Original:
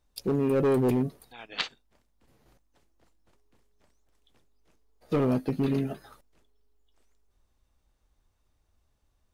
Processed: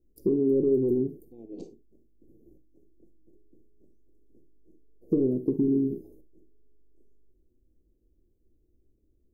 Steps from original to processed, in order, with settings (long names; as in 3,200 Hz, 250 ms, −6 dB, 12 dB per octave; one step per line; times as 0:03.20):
Chebyshev band-stop filter 370–6,400 Hz, order 3
healed spectral selection 0:05.62–0:05.93, 420–9,900 Hz
drawn EQ curve 150 Hz 0 dB, 340 Hz +12 dB, 2,300 Hz +4 dB, 3,400 Hz −17 dB, 9,000 Hz −17 dB, 14,000 Hz −6 dB
downward compressor, threshold −23 dBFS, peak gain reduction 10 dB
convolution reverb, pre-delay 6 ms, DRR 9 dB
level +1.5 dB